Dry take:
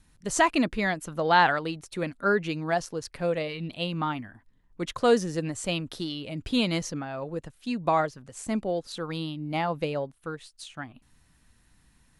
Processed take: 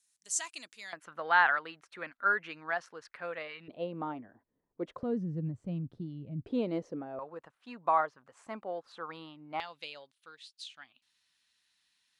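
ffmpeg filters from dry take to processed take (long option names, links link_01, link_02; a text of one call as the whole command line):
ffmpeg -i in.wav -af "asetnsamples=nb_out_samples=441:pad=0,asendcmd='0.93 bandpass f 1500;3.68 bandpass f 490;5.03 bandpass f 140;6.46 bandpass f 430;7.19 bandpass f 1100;9.6 bandpass f 3800',bandpass=frequency=7500:width_type=q:width=1.7:csg=0" out.wav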